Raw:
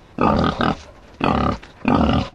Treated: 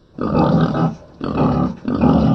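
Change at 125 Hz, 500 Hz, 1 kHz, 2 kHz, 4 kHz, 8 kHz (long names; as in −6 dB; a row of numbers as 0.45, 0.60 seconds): +6.0 dB, +2.5 dB, −1.5 dB, −6.0 dB, −7.0 dB, can't be measured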